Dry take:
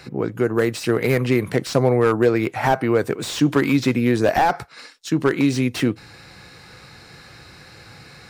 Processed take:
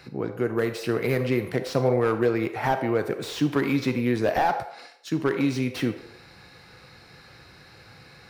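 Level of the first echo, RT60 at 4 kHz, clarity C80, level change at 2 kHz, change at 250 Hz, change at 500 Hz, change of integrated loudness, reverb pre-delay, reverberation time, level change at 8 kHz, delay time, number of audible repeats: none, 0.55 s, 11.5 dB, -5.5 dB, -6.0 dB, -5.0 dB, -5.5 dB, 29 ms, 0.70 s, -9.5 dB, none, none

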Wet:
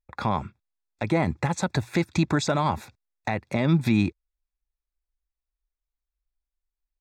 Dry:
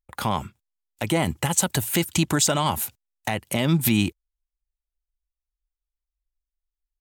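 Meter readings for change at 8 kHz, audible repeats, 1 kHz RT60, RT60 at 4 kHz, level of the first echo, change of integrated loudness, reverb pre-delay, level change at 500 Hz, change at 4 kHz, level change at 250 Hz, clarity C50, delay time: -15.0 dB, none, none, none, none, -2.5 dB, none, -0.5 dB, -8.5 dB, 0.0 dB, none, none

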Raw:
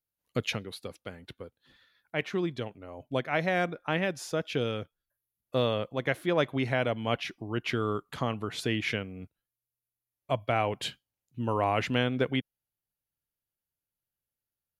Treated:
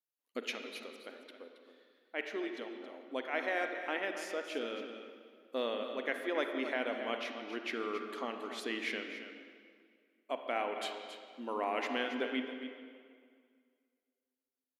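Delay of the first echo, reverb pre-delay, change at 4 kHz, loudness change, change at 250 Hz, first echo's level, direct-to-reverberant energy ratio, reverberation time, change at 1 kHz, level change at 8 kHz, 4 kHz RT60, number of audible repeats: 0.273 s, 35 ms, -6.5 dB, -7.0 dB, -8.0 dB, -10.5 dB, 4.0 dB, 2.0 s, -6.5 dB, -7.5 dB, 1.7 s, 1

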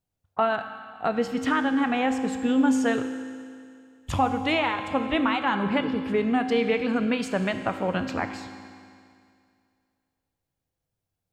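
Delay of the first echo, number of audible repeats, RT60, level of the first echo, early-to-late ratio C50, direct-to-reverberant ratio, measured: none, none, 2.3 s, none, 8.5 dB, 7.0 dB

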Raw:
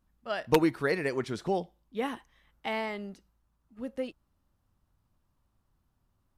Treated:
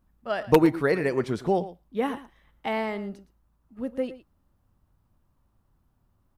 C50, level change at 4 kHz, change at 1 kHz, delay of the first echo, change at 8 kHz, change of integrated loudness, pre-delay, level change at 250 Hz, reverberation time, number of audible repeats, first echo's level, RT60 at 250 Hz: none, 0.0 dB, +4.5 dB, 0.114 s, n/a, +5.0 dB, none, +6.0 dB, none, 1, -15.5 dB, none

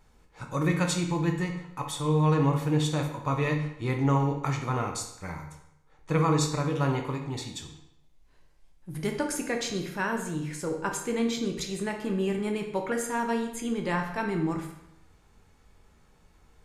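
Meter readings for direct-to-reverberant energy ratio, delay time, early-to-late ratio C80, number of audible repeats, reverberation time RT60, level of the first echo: 3.0 dB, none, 9.5 dB, none, 0.80 s, none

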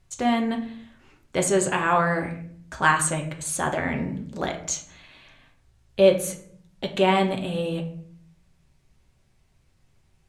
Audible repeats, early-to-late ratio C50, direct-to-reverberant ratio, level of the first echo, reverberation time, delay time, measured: none, 11.0 dB, 2.5 dB, none, 0.60 s, none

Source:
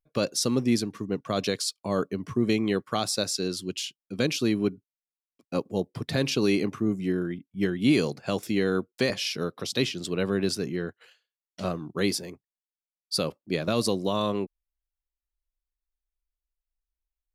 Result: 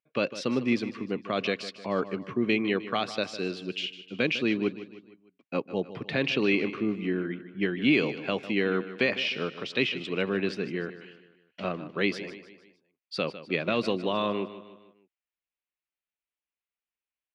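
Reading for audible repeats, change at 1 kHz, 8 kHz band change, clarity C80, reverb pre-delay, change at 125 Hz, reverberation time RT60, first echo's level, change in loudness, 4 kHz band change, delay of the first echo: 4, 0.0 dB, under -15 dB, none, none, -5.5 dB, none, -14.0 dB, -1.5 dB, -2.5 dB, 0.153 s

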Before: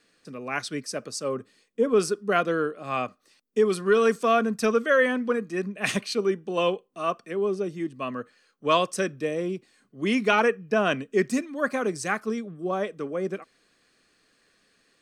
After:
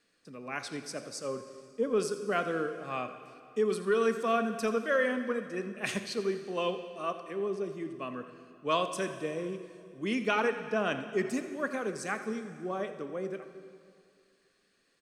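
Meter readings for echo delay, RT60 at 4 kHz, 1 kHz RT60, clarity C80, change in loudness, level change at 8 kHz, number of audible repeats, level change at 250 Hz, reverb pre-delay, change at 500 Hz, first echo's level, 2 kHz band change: 84 ms, 2.1 s, 2.3 s, 9.5 dB, -7.0 dB, -7.0 dB, 1, -6.5 dB, 6 ms, -7.0 dB, -14.5 dB, -7.0 dB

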